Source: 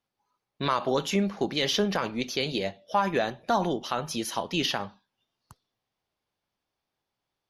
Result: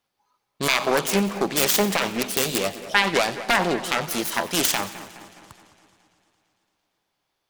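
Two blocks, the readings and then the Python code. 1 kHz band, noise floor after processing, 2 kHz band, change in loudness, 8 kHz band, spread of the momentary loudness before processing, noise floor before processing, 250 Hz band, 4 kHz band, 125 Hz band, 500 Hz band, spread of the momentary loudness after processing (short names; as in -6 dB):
+3.5 dB, -77 dBFS, +10.5 dB, +6.0 dB, +13.0 dB, 6 LU, -85 dBFS, +3.0 dB, +5.0 dB, +2.0 dB, +4.0 dB, 7 LU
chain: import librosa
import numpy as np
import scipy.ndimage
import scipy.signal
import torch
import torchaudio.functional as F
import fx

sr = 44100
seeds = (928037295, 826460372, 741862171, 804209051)

y = fx.self_delay(x, sr, depth_ms=0.46)
y = fx.low_shelf(y, sr, hz=410.0, db=-6.0)
y = fx.echo_split(y, sr, split_hz=2400.0, low_ms=209, high_ms=91, feedback_pct=52, wet_db=-14.0)
y = fx.echo_warbled(y, sr, ms=113, feedback_pct=78, rate_hz=2.8, cents=135, wet_db=-22)
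y = y * 10.0 ** (8.0 / 20.0)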